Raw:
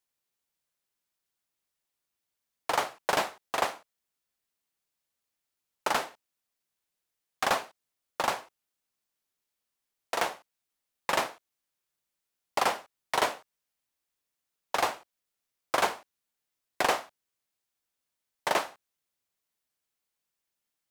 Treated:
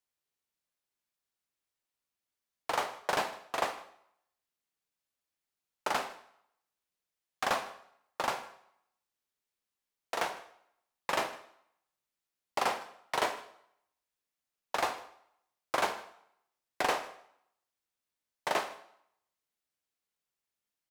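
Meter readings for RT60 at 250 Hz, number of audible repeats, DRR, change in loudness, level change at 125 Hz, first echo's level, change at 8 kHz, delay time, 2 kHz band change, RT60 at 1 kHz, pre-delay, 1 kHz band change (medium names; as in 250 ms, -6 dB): 0.65 s, 1, 8.5 dB, -4.0 dB, -3.5 dB, -22.5 dB, -5.0 dB, 156 ms, -3.5 dB, 0.75 s, 11 ms, -3.5 dB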